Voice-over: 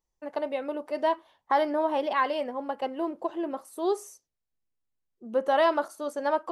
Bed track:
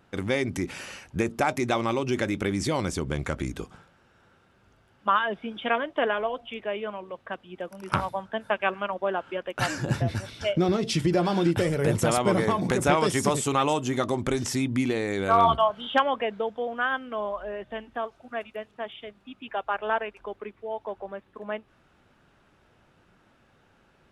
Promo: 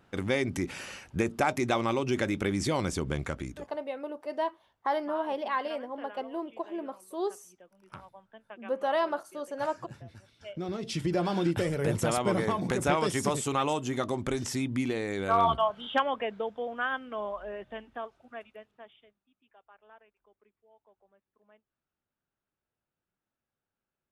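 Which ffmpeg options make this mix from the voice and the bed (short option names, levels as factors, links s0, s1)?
-filter_complex "[0:a]adelay=3350,volume=0.562[s0];[1:a]volume=5.31,afade=t=out:st=3.11:d=0.69:silence=0.112202,afade=t=in:st=10.39:d=0.83:silence=0.149624,afade=t=out:st=17.55:d=1.69:silence=0.0562341[s1];[s0][s1]amix=inputs=2:normalize=0"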